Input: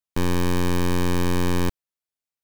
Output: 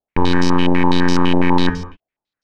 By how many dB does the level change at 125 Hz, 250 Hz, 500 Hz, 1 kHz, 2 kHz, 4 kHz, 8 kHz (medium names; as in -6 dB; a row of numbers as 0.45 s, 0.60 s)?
+3.5 dB, +9.0 dB, +6.0 dB, +11.0 dB, +9.0 dB, +9.0 dB, -1.0 dB